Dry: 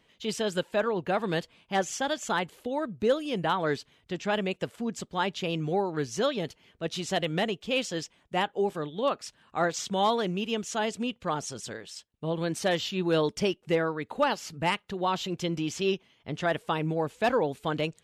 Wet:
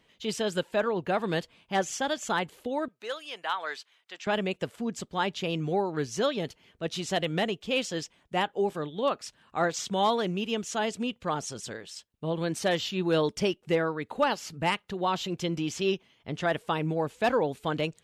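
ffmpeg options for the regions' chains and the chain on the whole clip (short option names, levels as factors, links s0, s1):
-filter_complex "[0:a]asettb=1/sr,asplit=3[s0][s1][s2];[s0]atrim=end=2.884[s3];[s1]atrim=start=2.88:end=4.27,asetpts=PTS-STARTPTS,afade=t=in:d=0.004:c=qsin,afade=t=out:st=1.386:d=0.004:c=qsin,highpass=1000,highshelf=f=6700:g=-4[s4];[s2]atrim=start=4.266[s5];[s3][s4]acrossfade=d=0.004:c1=hsin:c2=qsin[s6];[s6][s5]acrossfade=d=0.004:c1=qsin:c2=hsin"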